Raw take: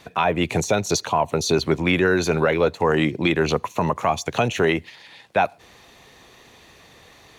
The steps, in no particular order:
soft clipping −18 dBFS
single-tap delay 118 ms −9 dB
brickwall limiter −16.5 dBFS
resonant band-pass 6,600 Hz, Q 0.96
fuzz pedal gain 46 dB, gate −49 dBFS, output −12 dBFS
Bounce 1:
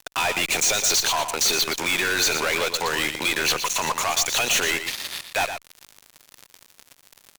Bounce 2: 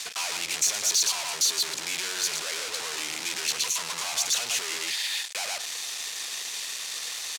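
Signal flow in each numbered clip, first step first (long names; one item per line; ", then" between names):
brickwall limiter, then resonant band-pass, then fuzz pedal, then soft clipping, then single-tap delay
single-tap delay, then brickwall limiter, then fuzz pedal, then soft clipping, then resonant band-pass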